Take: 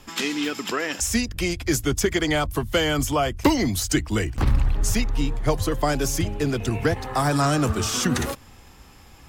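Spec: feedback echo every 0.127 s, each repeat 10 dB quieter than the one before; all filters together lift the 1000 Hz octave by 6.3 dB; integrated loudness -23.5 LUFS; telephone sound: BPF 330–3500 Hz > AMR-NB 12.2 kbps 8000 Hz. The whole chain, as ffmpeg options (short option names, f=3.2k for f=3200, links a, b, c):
-af "highpass=330,lowpass=3.5k,equalizer=f=1k:t=o:g=8.5,aecho=1:1:127|254|381|508:0.316|0.101|0.0324|0.0104,volume=1dB" -ar 8000 -c:a libopencore_amrnb -b:a 12200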